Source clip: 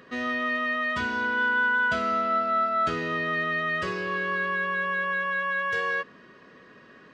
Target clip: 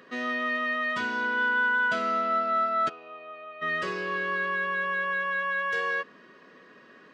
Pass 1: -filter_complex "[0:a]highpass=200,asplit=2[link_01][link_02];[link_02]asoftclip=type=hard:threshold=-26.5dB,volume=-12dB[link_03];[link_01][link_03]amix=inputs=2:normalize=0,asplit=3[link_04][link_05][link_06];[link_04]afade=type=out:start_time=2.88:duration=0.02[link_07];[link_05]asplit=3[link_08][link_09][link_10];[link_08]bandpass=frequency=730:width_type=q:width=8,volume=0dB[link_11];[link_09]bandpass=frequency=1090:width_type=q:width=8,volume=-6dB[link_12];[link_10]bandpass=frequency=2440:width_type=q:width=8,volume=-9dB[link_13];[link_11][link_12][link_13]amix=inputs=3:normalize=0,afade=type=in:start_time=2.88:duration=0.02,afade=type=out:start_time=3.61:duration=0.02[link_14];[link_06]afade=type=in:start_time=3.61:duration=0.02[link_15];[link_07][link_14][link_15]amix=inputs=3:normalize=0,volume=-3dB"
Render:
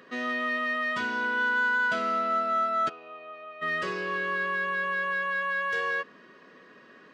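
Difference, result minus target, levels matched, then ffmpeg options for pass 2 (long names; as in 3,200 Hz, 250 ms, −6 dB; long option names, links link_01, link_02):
hard clipping: distortion +29 dB
-filter_complex "[0:a]highpass=200,asplit=2[link_01][link_02];[link_02]asoftclip=type=hard:threshold=-18.5dB,volume=-12dB[link_03];[link_01][link_03]amix=inputs=2:normalize=0,asplit=3[link_04][link_05][link_06];[link_04]afade=type=out:start_time=2.88:duration=0.02[link_07];[link_05]asplit=3[link_08][link_09][link_10];[link_08]bandpass=frequency=730:width_type=q:width=8,volume=0dB[link_11];[link_09]bandpass=frequency=1090:width_type=q:width=8,volume=-6dB[link_12];[link_10]bandpass=frequency=2440:width_type=q:width=8,volume=-9dB[link_13];[link_11][link_12][link_13]amix=inputs=3:normalize=0,afade=type=in:start_time=2.88:duration=0.02,afade=type=out:start_time=3.61:duration=0.02[link_14];[link_06]afade=type=in:start_time=3.61:duration=0.02[link_15];[link_07][link_14][link_15]amix=inputs=3:normalize=0,volume=-3dB"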